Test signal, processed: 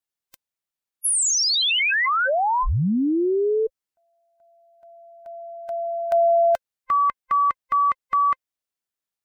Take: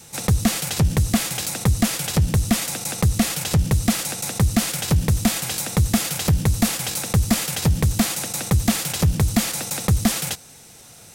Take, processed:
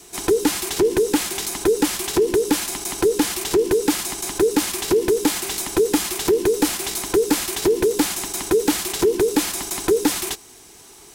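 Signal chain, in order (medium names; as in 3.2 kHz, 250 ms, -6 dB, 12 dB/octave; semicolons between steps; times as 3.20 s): every band turned upside down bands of 500 Hz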